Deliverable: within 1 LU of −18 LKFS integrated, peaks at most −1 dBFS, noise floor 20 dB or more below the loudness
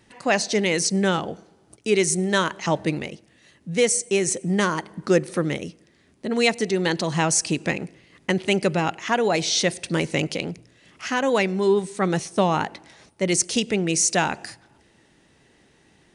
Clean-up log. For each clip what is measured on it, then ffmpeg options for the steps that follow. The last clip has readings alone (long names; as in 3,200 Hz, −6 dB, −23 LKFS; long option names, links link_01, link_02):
integrated loudness −23.0 LKFS; sample peak −6.5 dBFS; target loudness −18.0 LKFS
→ -af "volume=5dB"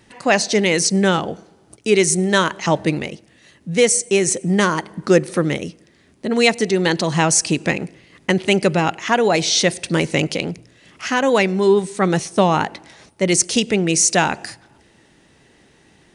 integrated loudness −18.0 LKFS; sample peak −1.5 dBFS; background noise floor −54 dBFS